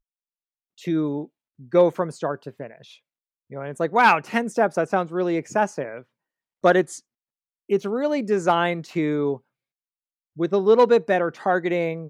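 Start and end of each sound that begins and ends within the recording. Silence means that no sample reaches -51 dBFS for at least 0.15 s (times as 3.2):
0.78–1.27
1.59–2.97
3.5–6.03
6.64–7
7.69–9.4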